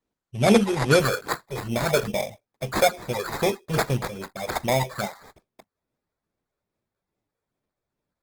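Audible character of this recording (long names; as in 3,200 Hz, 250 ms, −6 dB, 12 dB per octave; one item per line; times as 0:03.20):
phaser sweep stages 6, 2.4 Hz, lowest notch 220–2,600 Hz
aliases and images of a low sample rate 2,900 Hz, jitter 0%
Opus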